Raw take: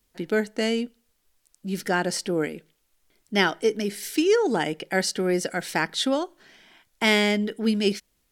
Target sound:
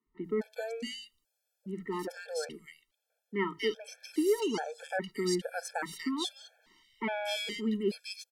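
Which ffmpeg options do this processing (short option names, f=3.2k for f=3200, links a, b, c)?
-filter_complex "[0:a]asettb=1/sr,asplit=3[a][b][c];[a]atrim=end=1.774[d];[b]atrim=start=1.77:end=3.56,asetpts=PTS-STARTPTS,afade=t=in:d=0.004:c=qsin,afade=t=out:st=1.786:d=0.004:c=qsin,bass=f=250:g=-3,treble=f=4k:g=-4[e];[c]atrim=start=3.556[f];[d][e]acrossfade=d=0.004:c1=hsin:c2=qsin[g];[g][f]acrossfade=d=0.004:c1=qsin:c2=hsin,acrossover=split=160|2100[h][i][j];[h]adelay=60[k];[j]adelay=240[l];[k][i][l]amix=inputs=3:normalize=0,afftfilt=real='re*gt(sin(2*PI*1.2*pts/sr)*(1-2*mod(floor(b*sr/1024/450),2)),0)':imag='im*gt(sin(2*PI*1.2*pts/sr)*(1-2*mod(floor(b*sr/1024/450),2)),0)':win_size=1024:overlap=0.75,volume=-6dB"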